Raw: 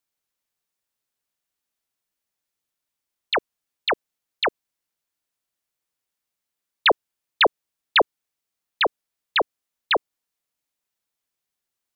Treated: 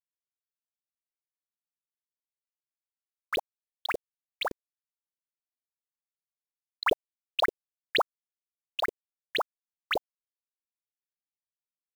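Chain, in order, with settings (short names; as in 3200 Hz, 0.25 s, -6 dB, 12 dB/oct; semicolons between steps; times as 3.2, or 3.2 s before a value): local time reversal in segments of 35 ms; low shelf 86 Hz +10 dB; bit-crush 6-bit; gain -8.5 dB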